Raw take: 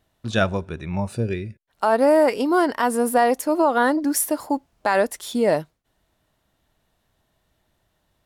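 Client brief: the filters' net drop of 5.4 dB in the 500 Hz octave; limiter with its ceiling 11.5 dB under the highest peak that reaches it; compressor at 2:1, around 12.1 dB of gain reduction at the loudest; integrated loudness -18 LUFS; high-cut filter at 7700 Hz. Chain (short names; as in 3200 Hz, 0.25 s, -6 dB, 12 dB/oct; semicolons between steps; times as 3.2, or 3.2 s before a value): LPF 7700 Hz; bell 500 Hz -7 dB; compressor 2:1, threshold -39 dBFS; gain +21.5 dB; limiter -8 dBFS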